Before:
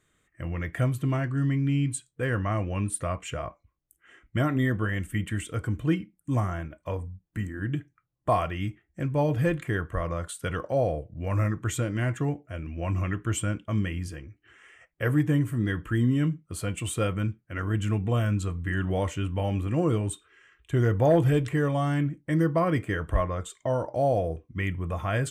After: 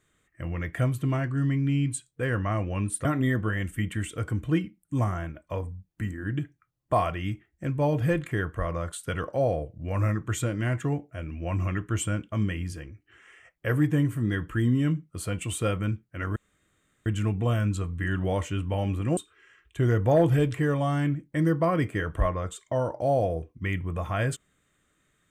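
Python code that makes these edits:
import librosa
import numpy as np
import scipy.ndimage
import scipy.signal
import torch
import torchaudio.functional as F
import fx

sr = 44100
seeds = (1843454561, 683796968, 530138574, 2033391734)

y = fx.edit(x, sr, fx.cut(start_s=3.05, length_s=1.36),
    fx.insert_room_tone(at_s=17.72, length_s=0.7),
    fx.cut(start_s=19.83, length_s=0.28), tone=tone)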